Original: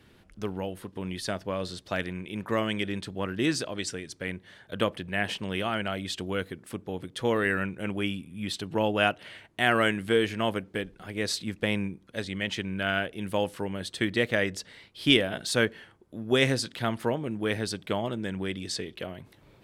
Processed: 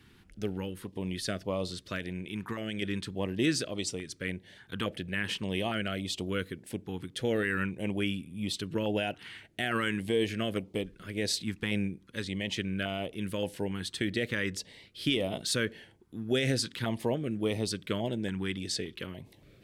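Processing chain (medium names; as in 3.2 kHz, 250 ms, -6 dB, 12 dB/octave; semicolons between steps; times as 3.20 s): peak limiter -17 dBFS, peak gain reduction 9.5 dB; 1.95–2.82 s: compression, threshold -30 dBFS, peak gain reduction 6 dB; step-sequenced notch 3.5 Hz 590–1600 Hz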